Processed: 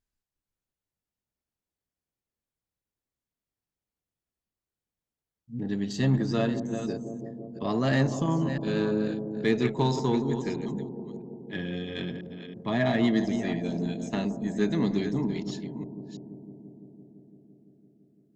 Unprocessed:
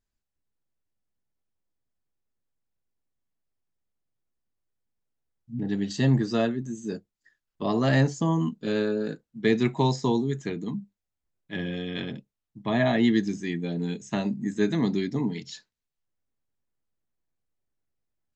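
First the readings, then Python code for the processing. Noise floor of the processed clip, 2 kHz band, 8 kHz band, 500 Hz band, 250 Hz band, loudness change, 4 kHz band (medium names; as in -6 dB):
under -85 dBFS, -2.0 dB, no reading, -1.0 dB, -1.0 dB, -2.0 dB, -2.0 dB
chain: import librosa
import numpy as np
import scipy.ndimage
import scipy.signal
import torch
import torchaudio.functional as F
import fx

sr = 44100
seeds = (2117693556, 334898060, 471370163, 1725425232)

y = fx.reverse_delay(x, sr, ms=330, wet_db=-10)
y = fx.echo_bbd(y, sr, ms=169, stages=1024, feedback_pct=82, wet_db=-11.5)
y = fx.cheby_harmonics(y, sr, harmonics=(8,), levels_db=(-32,), full_scale_db=-9.5)
y = y * 10.0 ** (-2.5 / 20.0)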